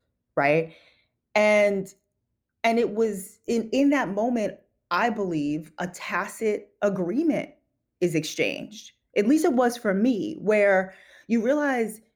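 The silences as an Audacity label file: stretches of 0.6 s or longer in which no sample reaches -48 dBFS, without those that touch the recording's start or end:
1.930000	2.640000	silence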